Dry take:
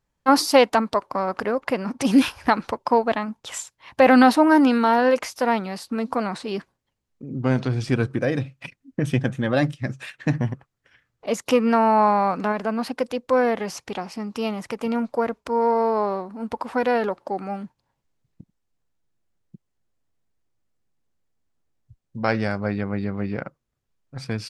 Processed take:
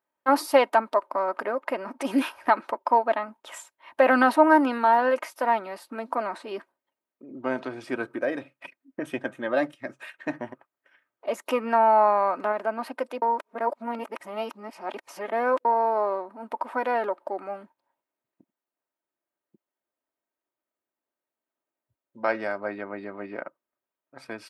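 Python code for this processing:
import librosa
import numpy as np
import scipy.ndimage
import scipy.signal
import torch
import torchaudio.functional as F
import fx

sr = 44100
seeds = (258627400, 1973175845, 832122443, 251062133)

y = fx.edit(x, sr, fx.reverse_span(start_s=13.22, length_s=2.43), tone=tone)
y = scipy.signal.sosfilt(scipy.signal.butter(2, 480.0, 'highpass', fs=sr, output='sos'), y)
y = fx.peak_eq(y, sr, hz=5600.0, db=-14.5, octaves=2.0)
y = y + 0.46 * np.pad(y, (int(3.2 * sr / 1000.0), 0))[:len(y)]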